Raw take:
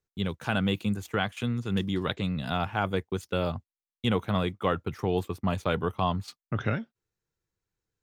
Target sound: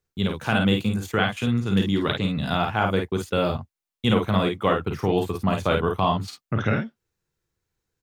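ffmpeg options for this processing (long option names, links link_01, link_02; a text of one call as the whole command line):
ffmpeg -i in.wav -af "aecho=1:1:37|51:0.376|0.562,volume=4.5dB" out.wav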